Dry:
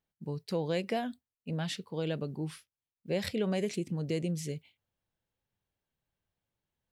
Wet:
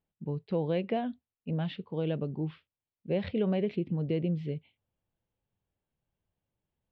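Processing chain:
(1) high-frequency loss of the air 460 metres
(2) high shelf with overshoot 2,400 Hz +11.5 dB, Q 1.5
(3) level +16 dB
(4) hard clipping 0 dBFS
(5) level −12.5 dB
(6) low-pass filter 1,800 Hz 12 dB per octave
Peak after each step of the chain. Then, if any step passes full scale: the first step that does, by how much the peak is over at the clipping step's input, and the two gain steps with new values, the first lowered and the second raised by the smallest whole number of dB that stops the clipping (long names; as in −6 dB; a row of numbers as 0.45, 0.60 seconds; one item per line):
−22.5, −21.5, −5.5, −5.5, −18.0, −19.0 dBFS
no step passes full scale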